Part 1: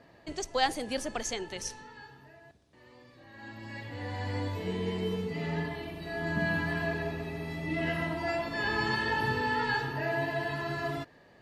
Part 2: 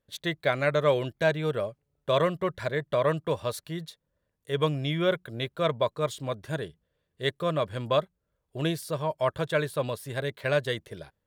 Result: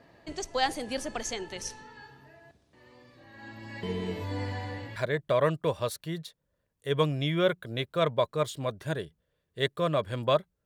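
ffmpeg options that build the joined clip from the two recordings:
ffmpeg -i cue0.wav -i cue1.wav -filter_complex "[0:a]apad=whole_dur=10.65,atrim=end=10.65,asplit=2[link_01][link_02];[link_01]atrim=end=3.832[link_03];[link_02]atrim=start=3.828:end=4.962,asetpts=PTS-STARTPTS,areverse[link_04];[1:a]atrim=start=2.588:end=8.28[link_05];[link_03][link_04]acrossfade=duration=0.004:curve1=hsin:curve2=hsin[link_06];[link_06][link_05]acrossfade=duration=0.004:curve1=hsin:curve2=hsin" out.wav

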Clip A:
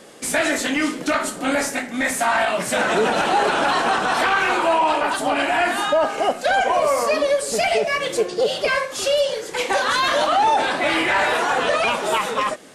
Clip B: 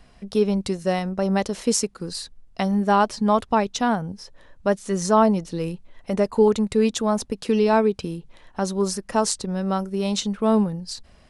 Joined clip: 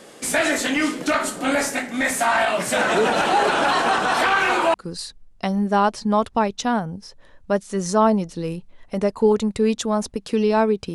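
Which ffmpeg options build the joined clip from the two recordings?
ffmpeg -i cue0.wav -i cue1.wav -filter_complex "[0:a]apad=whole_dur=10.94,atrim=end=10.94,atrim=end=4.742[link_01];[1:a]atrim=start=1.898:end=8.1[link_02];[link_01][link_02]acrossfade=duration=0.004:curve1=hsin:curve2=hsin" out.wav

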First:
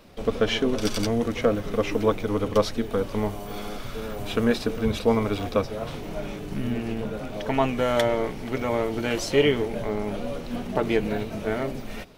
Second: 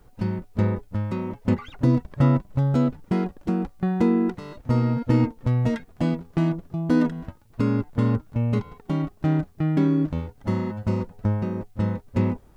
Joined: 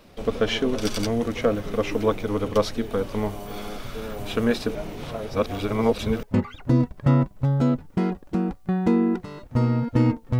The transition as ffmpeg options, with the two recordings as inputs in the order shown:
ffmpeg -i cue0.wav -i cue1.wav -filter_complex "[0:a]apad=whole_dur=10.39,atrim=end=10.39,asplit=2[link_01][link_02];[link_01]atrim=end=4.752[link_03];[link_02]atrim=start=4.748:end=6.232,asetpts=PTS-STARTPTS,areverse[link_04];[1:a]atrim=start=1.368:end=5.53[link_05];[link_03][link_04]acrossfade=duration=0.004:curve1=hsin:curve2=hsin[link_06];[link_06][link_05]acrossfade=duration=0.004:curve1=hsin:curve2=hsin" out.wav

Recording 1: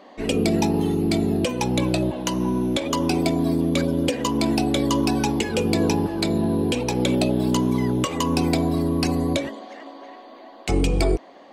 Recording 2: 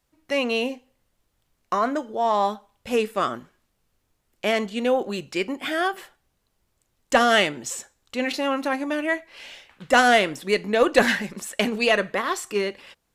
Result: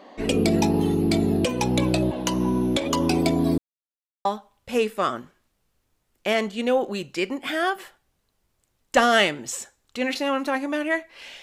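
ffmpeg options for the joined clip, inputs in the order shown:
ffmpeg -i cue0.wav -i cue1.wav -filter_complex "[0:a]apad=whole_dur=11.42,atrim=end=11.42,asplit=2[link_01][link_02];[link_01]atrim=end=3.58,asetpts=PTS-STARTPTS,afade=type=out:start_time=3.576:duration=0.004:curve=hsin[link_03];[link_02]atrim=start=3.58:end=4.25,asetpts=PTS-STARTPTS,volume=0[link_04];[1:a]atrim=start=2.43:end=9.6,asetpts=PTS-STARTPTS,afade=type=in:duration=0.004:curve=hsin[link_05];[link_03][link_04][link_05]concat=n=3:v=0:a=1" out.wav

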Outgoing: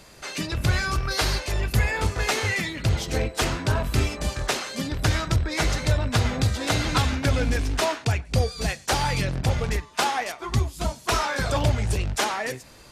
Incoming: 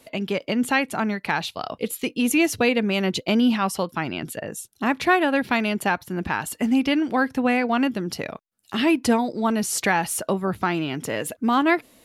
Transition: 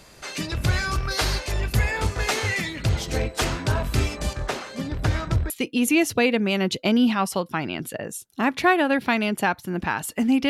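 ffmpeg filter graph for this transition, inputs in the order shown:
ffmpeg -i cue0.wav -i cue1.wav -filter_complex "[0:a]asettb=1/sr,asplit=3[link_01][link_02][link_03];[link_01]atrim=end=4.334[link_04];[link_02]atrim=start=4.33:end=5.5,asetpts=PTS-STARTPTS,afade=type=in:duration=0.004:curve=qsin,afade=type=out:start_time=1.166:duration=0.004:curve=qsin,highshelf=frequency=2600:gain=-10[link_05];[link_03]atrim=start=5.496[link_06];[link_04][link_05]acrossfade=duration=0.004:curve1=hsin:curve2=qsin[link_07];[link_07][link_06]acrossfade=duration=0.004:curve1=qsin:curve2=hsin,apad=whole_dur=10.49,atrim=end=10.49,atrim=end=5.502[link_08];[1:a]atrim=start=1.928:end=6.92[link_09];[link_08][link_09]acrossfade=duration=0.004:curve1=hsin:curve2=hsin" out.wav

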